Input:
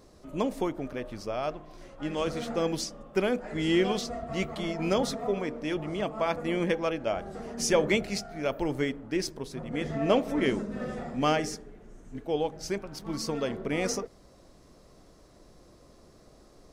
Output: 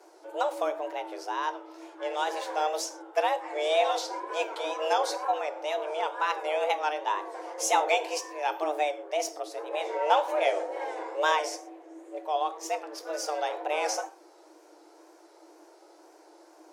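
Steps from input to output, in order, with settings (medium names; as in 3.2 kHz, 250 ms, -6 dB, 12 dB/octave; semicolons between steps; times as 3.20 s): gated-style reverb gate 150 ms falling, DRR 10.5 dB; wow and flutter 110 cents; frequency shift +300 Hz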